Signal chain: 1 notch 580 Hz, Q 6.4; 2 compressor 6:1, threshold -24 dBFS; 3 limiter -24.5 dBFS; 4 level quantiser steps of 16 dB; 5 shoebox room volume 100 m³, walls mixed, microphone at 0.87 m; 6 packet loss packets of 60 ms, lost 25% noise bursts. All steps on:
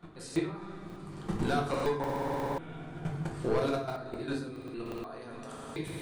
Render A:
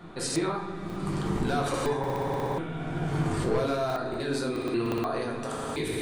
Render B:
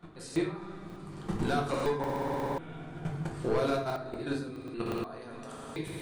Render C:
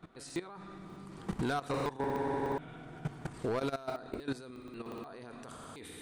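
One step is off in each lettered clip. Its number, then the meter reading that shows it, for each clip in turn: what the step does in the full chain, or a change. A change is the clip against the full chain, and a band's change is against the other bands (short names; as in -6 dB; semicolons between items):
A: 4, crest factor change -3.0 dB; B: 2, mean gain reduction 2.5 dB; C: 5, crest factor change -2.0 dB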